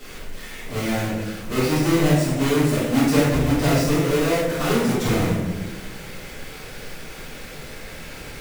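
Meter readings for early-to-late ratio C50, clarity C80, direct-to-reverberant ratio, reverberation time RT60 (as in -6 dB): 0.0 dB, 3.5 dB, -11.5 dB, 1.2 s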